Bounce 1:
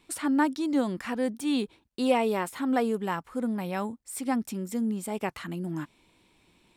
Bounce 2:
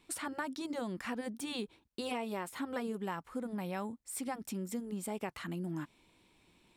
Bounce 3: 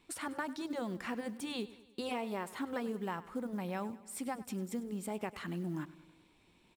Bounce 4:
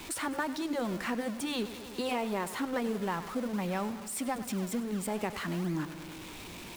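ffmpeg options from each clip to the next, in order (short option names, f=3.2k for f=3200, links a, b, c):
-af "afftfilt=real='re*lt(hypot(re,im),0.501)':imag='im*lt(hypot(re,im),0.501)':win_size=1024:overlap=0.75,acompressor=threshold=-31dB:ratio=4,volume=-3.5dB"
-af "highshelf=f=5.1k:g=-4.5,acrusher=bits=8:mode=log:mix=0:aa=0.000001,aecho=1:1:99|198|297|396|495:0.133|0.076|0.0433|0.0247|0.0141"
-filter_complex "[0:a]aeval=exprs='val(0)+0.5*0.00668*sgn(val(0))':c=same,acrossover=split=190|1400[a][b][c];[a]acrusher=samples=38:mix=1:aa=0.000001:lfo=1:lforange=38:lforate=2.4[d];[d][b][c]amix=inputs=3:normalize=0,volume=4dB"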